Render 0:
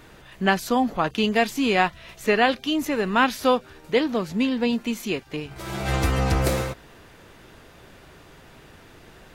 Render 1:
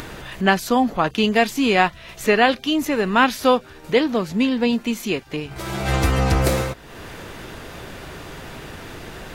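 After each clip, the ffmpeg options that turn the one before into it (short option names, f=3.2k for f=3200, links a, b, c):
-af "acompressor=mode=upward:threshold=-29dB:ratio=2.5,volume=3.5dB"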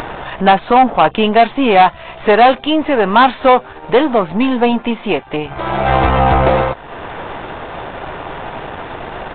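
-af "aeval=exprs='if(lt(val(0),0),0.447*val(0),val(0))':c=same,equalizer=f=820:w=0.94:g=12.5,aresample=8000,asoftclip=type=tanh:threshold=-9dB,aresample=44100,volume=6.5dB"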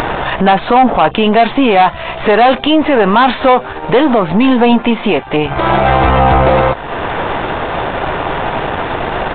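-af "alimiter=level_in=10.5dB:limit=-1dB:release=50:level=0:latency=1,volume=-1dB"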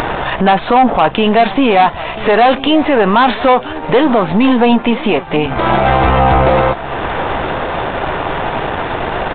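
-af "aecho=1:1:991:0.15,volume=-1dB"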